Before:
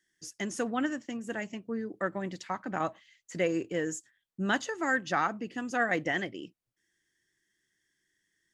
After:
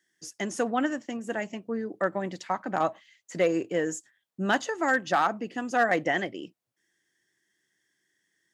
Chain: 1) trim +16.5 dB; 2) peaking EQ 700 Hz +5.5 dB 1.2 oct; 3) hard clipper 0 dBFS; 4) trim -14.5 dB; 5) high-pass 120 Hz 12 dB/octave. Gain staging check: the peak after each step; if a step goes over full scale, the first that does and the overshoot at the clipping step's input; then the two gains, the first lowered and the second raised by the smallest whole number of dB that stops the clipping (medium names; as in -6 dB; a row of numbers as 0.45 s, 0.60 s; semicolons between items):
+2.0 dBFS, +4.5 dBFS, 0.0 dBFS, -14.5 dBFS, -12.5 dBFS; step 1, 4.5 dB; step 1 +11.5 dB, step 4 -9.5 dB